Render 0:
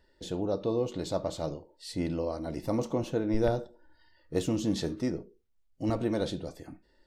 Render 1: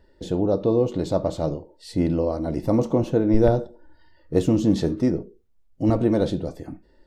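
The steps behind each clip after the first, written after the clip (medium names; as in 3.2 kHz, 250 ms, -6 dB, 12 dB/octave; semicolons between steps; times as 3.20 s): tilt shelf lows +5 dB, about 1.1 kHz; trim +5.5 dB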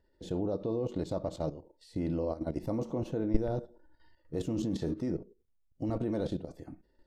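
level held to a coarse grid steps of 13 dB; trim -5.5 dB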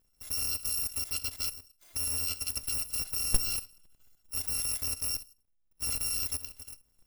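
bit-reversed sample order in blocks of 256 samples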